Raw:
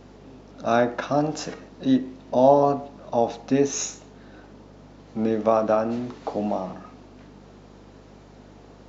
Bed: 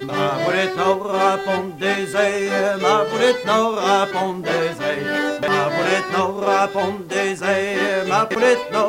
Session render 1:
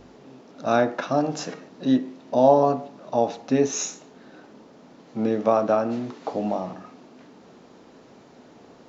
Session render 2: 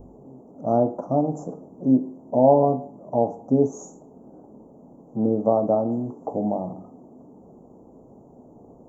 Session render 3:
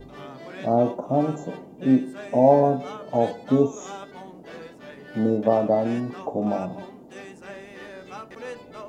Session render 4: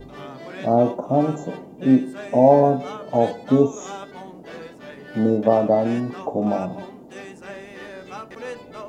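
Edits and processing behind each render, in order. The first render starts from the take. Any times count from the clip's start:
hum removal 50 Hz, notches 4
inverse Chebyshev band-stop filter 1,900–4,300 Hz, stop band 60 dB; low-shelf EQ 110 Hz +11.5 dB
mix in bed −21.5 dB
level +3 dB; brickwall limiter −3 dBFS, peak gain reduction 1.5 dB

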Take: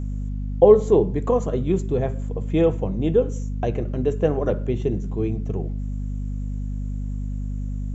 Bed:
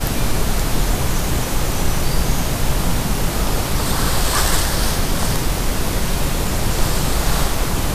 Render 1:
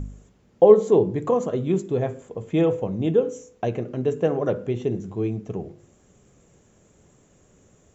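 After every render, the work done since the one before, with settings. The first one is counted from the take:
hum removal 50 Hz, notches 10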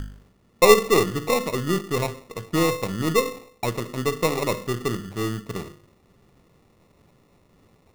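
gain on one half-wave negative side −3 dB
decimation without filtering 28×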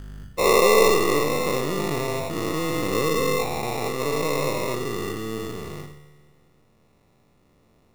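every bin's largest magnitude spread in time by 480 ms
tuned comb filter 74 Hz, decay 1.6 s, harmonics all, mix 70%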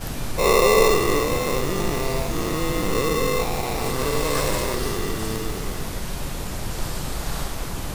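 mix in bed −10 dB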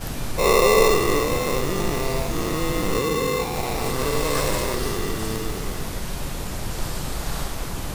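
0:02.98–0:03.56: notch comb filter 640 Hz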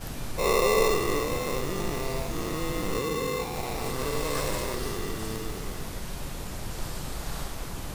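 level −6.5 dB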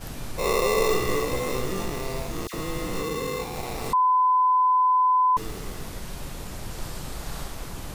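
0:00.87–0:01.85: double-tracking delay 16 ms −4 dB
0:02.47–0:03.03: all-pass dispersion lows, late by 64 ms, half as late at 1,600 Hz
0:03.93–0:05.37: beep over 1,010 Hz −16.5 dBFS

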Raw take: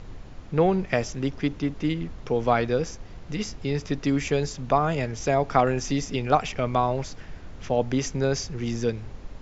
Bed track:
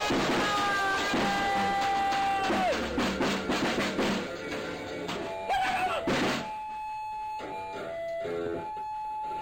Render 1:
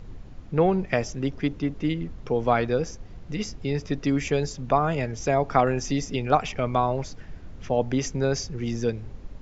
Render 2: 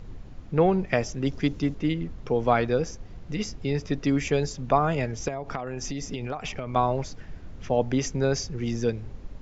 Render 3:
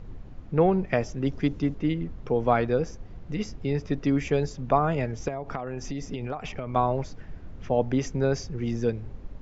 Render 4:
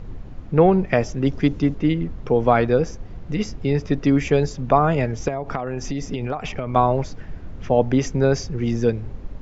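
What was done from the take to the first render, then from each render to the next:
broadband denoise 6 dB, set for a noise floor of −43 dBFS
0:01.26–0:01.75: bass and treble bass +2 dB, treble +9 dB; 0:05.28–0:06.76: downward compressor 12 to 1, threshold −27 dBFS
high-shelf EQ 3,200 Hz −9.5 dB
level +6.5 dB; brickwall limiter −3 dBFS, peak gain reduction 2 dB

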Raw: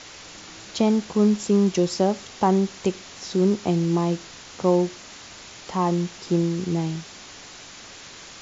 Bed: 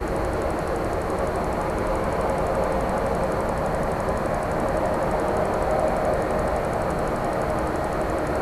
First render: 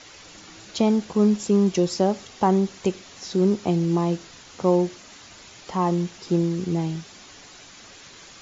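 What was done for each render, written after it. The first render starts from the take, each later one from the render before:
broadband denoise 6 dB, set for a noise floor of −43 dBFS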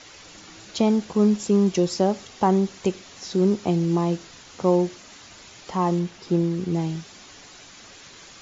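0:05.99–0:06.74: high-shelf EQ 6,900 Hz −10 dB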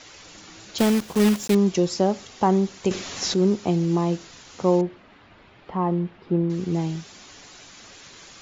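0:00.78–0:01.56: one scale factor per block 3 bits
0:02.91–0:03.34: clip gain +10.5 dB
0:04.81–0:06.50: high-frequency loss of the air 470 metres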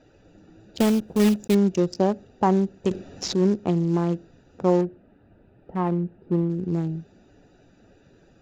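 adaptive Wiener filter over 41 samples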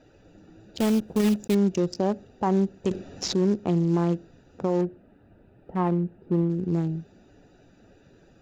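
brickwall limiter −15.5 dBFS, peak gain reduction 7.5 dB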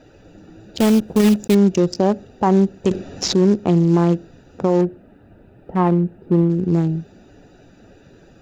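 level +8 dB

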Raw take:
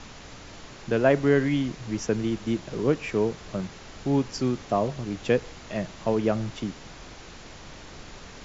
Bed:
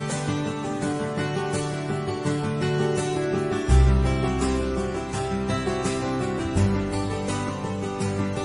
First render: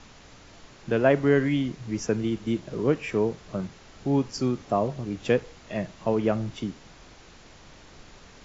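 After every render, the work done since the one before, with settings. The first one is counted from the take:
noise reduction from a noise print 6 dB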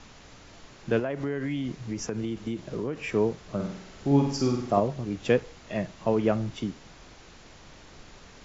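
0:00.99–0:02.99: downward compressor 8 to 1, threshold −26 dBFS
0:03.55–0:04.80: flutter between parallel walls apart 8.5 metres, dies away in 0.66 s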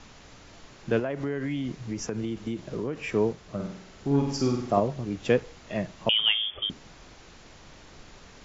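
0:03.32–0:04.28: tube saturation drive 14 dB, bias 0.5
0:06.09–0:06.70: voice inversion scrambler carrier 3,400 Hz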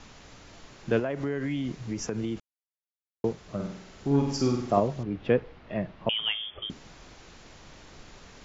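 0:02.40–0:03.24: silence
0:05.03–0:06.70: high-frequency loss of the air 330 metres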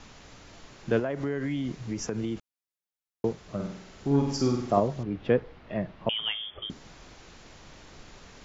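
dynamic equaliser 2,600 Hz, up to −4 dB, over −51 dBFS, Q 4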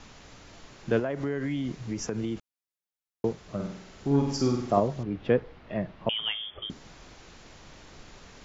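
no processing that can be heard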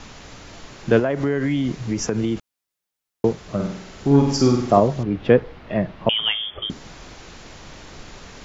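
level +9 dB
brickwall limiter −1 dBFS, peak gain reduction 1.5 dB

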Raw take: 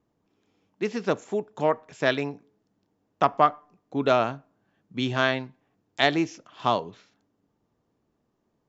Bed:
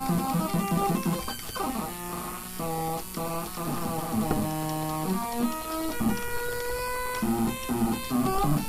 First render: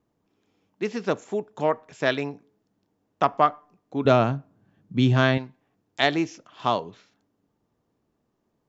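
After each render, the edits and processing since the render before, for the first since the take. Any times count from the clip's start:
0:04.05–0:05.38: parametric band 110 Hz +12.5 dB 2.8 octaves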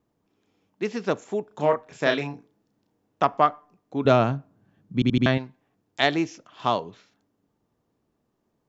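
0:01.47–0:03.25: double-tracking delay 34 ms −5 dB
0:04.94: stutter in place 0.08 s, 4 plays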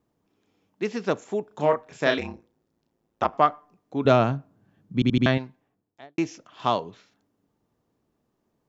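0:02.18–0:03.33: ring modulation 55 Hz
0:05.44–0:06.18: fade out and dull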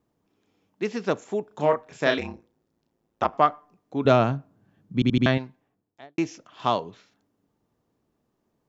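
no processing that can be heard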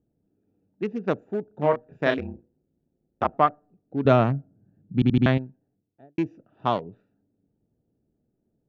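adaptive Wiener filter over 41 samples
bass and treble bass +3 dB, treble −12 dB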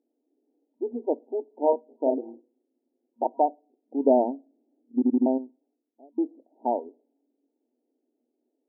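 brick-wall band-pass 230–950 Hz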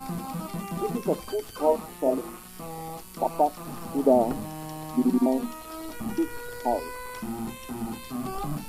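mix in bed −7 dB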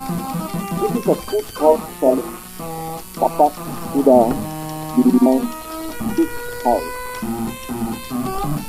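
level +9.5 dB
brickwall limiter −1 dBFS, peak gain reduction 3 dB

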